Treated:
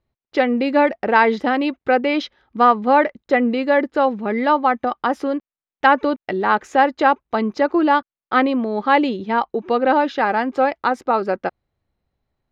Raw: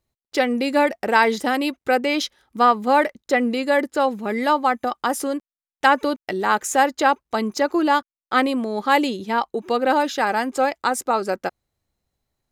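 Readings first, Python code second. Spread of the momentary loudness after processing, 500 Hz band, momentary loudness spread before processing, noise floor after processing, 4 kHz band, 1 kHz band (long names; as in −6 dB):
6 LU, +2.5 dB, 6 LU, below −85 dBFS, −3.0 dB, +2.5 dB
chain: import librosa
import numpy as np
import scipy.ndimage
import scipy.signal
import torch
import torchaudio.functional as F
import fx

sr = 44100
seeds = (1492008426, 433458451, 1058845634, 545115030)

y = fx.air_absorb(x, sr, metres=270.0)
y = y * librosa.db_to_amplitude(3.5)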